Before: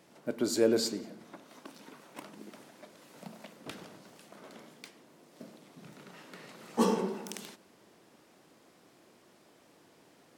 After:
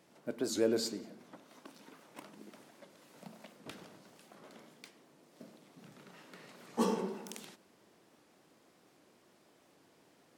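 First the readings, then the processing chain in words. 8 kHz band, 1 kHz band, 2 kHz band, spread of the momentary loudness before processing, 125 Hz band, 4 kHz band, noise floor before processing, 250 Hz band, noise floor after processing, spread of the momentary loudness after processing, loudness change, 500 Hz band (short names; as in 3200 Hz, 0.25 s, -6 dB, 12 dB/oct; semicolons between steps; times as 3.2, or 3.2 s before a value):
-4.5 dB, -4.5 dB, -4.5 dB, 24 LU, -4.5 dB, -4.5 dB, -63 dBFS, -4.5 dB, -67 dBFS, 24 LU, -4.5 dB, -4.5 dB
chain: record warp 78 rpm, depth 160 cents; gain -4.5 dB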